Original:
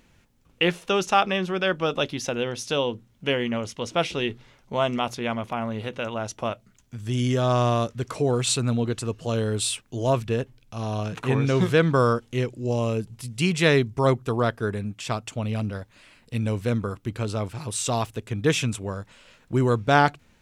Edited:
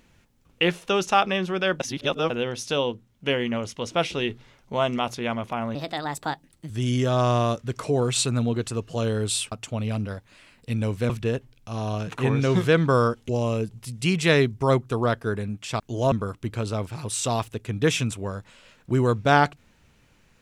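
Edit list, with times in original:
1.8–2.3 reverse
2.92–3.26 gain -3.5 dB
5.75–7.01 speed 133%
9.83–10.15 swap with 15.16–16.74
12.34–12.65 cut

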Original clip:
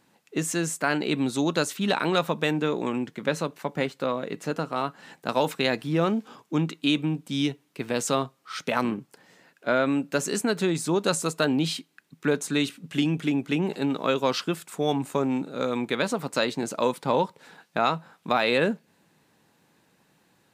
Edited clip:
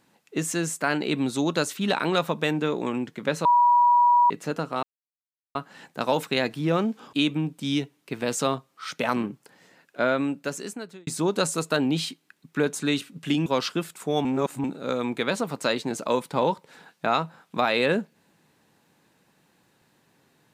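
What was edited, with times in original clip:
3.45–4.3 bleep 967 Hz -14.5 dBFS
4.83 insert silence 0.72 s
6.41–6.81 cut
9.75–10.75 fade out
13.14–14.18 cut
14.97–15.36 reverse

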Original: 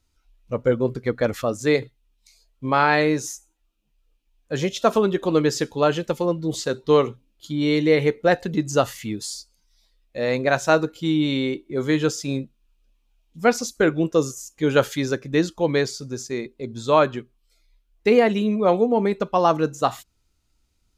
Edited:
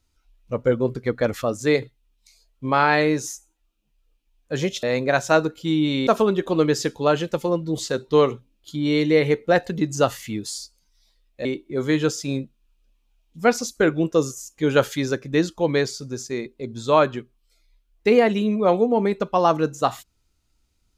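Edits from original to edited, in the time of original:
10.21–11.45 move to 4.83

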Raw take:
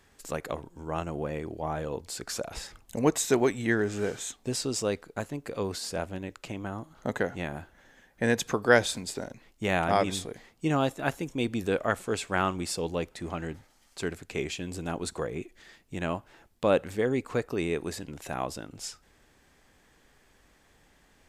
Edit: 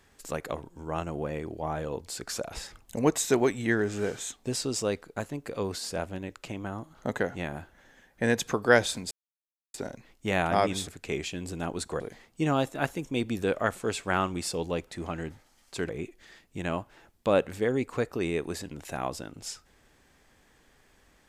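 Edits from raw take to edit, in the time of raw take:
9.11 insert silence 0.63 s
14.13–15.26 move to 10.24

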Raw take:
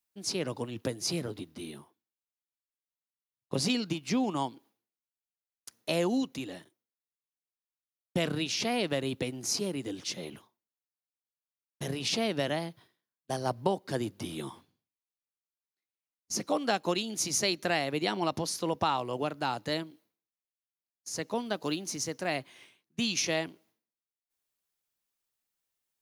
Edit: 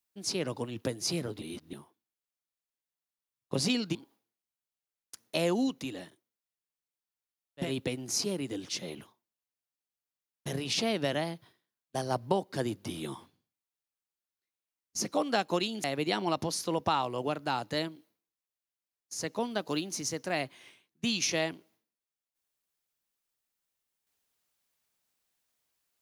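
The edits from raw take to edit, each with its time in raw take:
1.42–1.73 reverse
3.95–4.49 cut
8.19–9 cut, crossfade 0.16 s
17.19–17.79 cut

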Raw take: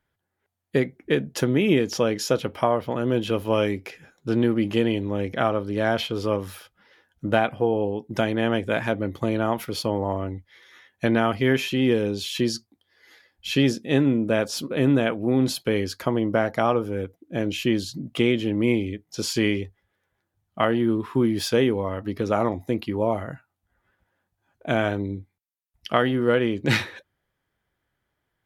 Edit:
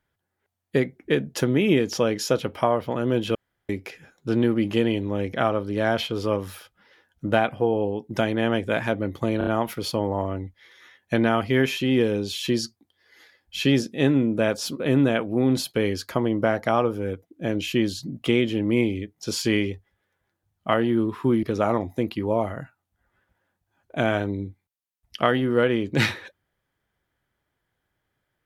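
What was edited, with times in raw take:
3.35–3.69 room tone
9.38 stutter 0.03 s, 4 plays
21.34–22.14 cut

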